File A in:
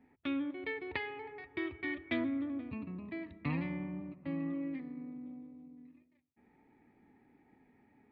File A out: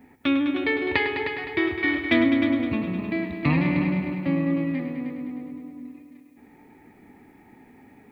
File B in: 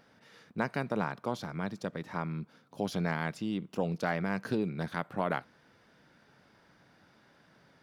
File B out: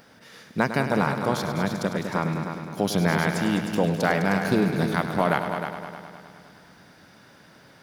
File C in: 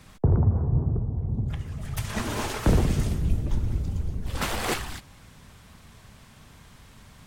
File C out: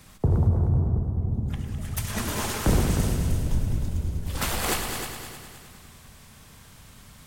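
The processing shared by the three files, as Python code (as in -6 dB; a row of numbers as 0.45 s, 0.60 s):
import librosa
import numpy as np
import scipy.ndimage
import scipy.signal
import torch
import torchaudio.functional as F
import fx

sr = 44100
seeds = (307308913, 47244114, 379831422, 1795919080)

y = fx.high_shelf(x, sr, hz=7000.0, db=10.0)
y = fx.echo_heads(y, sr, ms=103, heads='all three', feedback_pct=51, wet_db=-11)
y = y * 10.0 ** (-26 / 20.0) / np.sqrt(np.mean(np.square(y)))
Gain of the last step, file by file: +13.5 dB, +8.5 dB, -1.5 dB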